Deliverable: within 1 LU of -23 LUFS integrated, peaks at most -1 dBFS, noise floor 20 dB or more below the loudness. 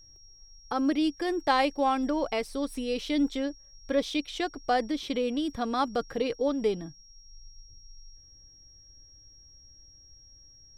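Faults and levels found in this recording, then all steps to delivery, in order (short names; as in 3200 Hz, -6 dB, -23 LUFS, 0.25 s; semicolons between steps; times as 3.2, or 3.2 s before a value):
steady tone 5600 Hz; tone level -53 dBFS; loudness -29.0 LUFS; peak -12.0 dBFS; loudness target -23.0 LUFS
-> notch 5600 Hz, Q 30; gain +6 dB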